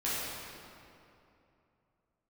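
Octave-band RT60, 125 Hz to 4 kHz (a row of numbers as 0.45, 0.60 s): 3.3, 3.0, 2.9, 2.7, 2.2, 1.8 s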